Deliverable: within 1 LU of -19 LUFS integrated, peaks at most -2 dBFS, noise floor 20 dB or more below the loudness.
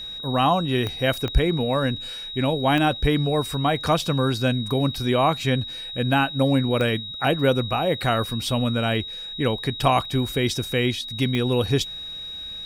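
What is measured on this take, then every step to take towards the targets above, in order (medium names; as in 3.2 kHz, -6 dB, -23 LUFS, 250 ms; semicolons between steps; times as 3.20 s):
clicks found 5; steady tone 3.8 kHz; tone level -32 dBFS; loudness -23.0 LUFS; peak level -6.5 dBFS; loudness target -19.0 LUFS
-> de-click; band-stop 3.8 kHz, Q 30; trim +4 dB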